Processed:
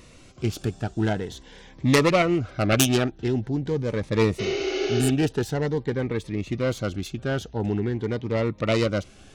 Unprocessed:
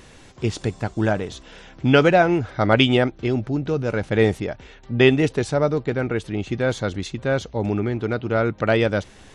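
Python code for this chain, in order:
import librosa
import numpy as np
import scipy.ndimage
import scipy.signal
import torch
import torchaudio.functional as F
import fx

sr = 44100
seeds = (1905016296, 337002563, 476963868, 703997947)

y = fx.self_delay(x, sr, depth_ms=0.35)
y = fx.spec_repair(y, sr, seeds[0], start_s=4.42, length_s=0.65, low_hz=300.0, high_hz=6800.0, source='after')
y = fx.notch_cascade(y, sr, direction='rising', hz=0.46)
y = F.gain(torch.from_numpy(y), -2.0).numpy()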